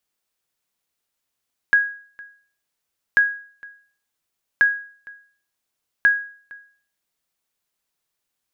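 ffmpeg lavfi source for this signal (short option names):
-f lavfi -i "aevalsrc='0.398*(sin(2*PI*1650*mod(t,1.44))*exp(-6.91*mod(t,1.44)/0.47)+0.0596*sin(2*PI*1650*max(mod(t,1.44)-0.46,0))*exp(-6.91*max(mod(t,1.44)-0.46,0)/0.47))':d=5.76:s=44100"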